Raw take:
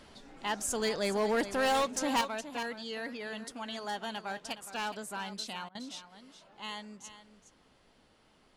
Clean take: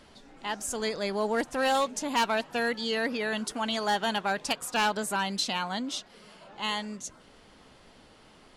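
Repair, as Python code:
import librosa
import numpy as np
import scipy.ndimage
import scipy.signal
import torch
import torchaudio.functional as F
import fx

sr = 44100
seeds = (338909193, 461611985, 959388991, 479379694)

y = fx.fix_declip(x, sr, threshold_db=-24.5)
y = fx.fix_interpolate(y, sr, at_s=(5.69,), length_ms=59.0)
y = fx.fix_echo_inverse(y, sr, delay_ms=417, level_db=-12.5)
y = fx.gain(y, sr, db=fx.steps((0.0, 0.0), (2.21, 10.0)))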